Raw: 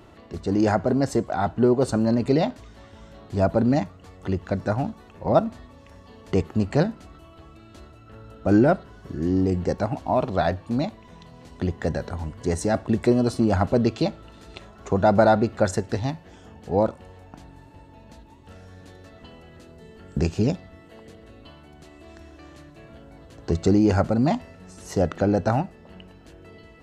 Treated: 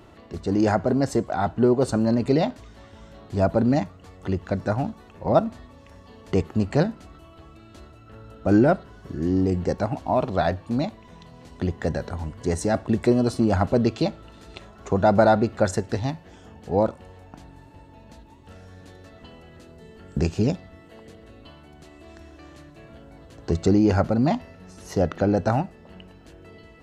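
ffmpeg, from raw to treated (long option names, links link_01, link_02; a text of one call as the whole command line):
ffmpeg -i in.wav -filter_complex "[0:a]asettb=1/sr,asplit=3[link_01][link_02][link_03];[link_01]atrim=end=23.664[link_04];[link_02]atrim=start=23.66:end=25.37,asetpts=PTS-STARTPTS,afade=type=in:duration=0.004:curve=qsin,afade=type=out:start_time=1.706:duration=0.004:curve=qsin,equalizer=frequency=7900:width_type=o:width=0.36:gain=-7.5[link_05];[link_03]atrim=start=25.366[link_06];[link_04][link_05]acrossfade=duration=0.004:curve1=hsin:curve2=qsin[link_07];[link_07][link_06]acrossfade=duration=0.004:curve1=qsin:curve2=hsin" out.wav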